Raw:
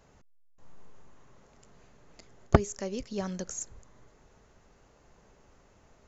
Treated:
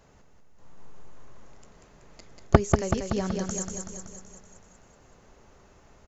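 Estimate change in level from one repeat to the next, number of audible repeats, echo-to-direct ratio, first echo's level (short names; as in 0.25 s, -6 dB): -4.5 dB, 7, -2.5 dB, -4.5 dB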